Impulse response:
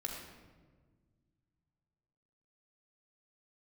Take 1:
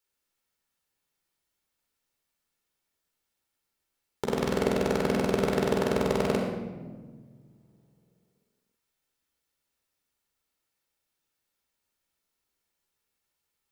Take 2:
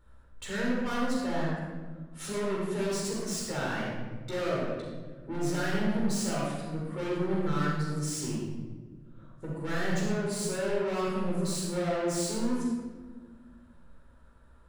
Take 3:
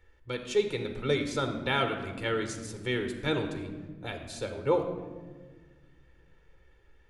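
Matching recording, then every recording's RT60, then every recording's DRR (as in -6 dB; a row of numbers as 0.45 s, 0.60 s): 1; 1.5 s, 1.5 s, 1.6 s; 0.5 dB, -5.5 dB, 6.5 dB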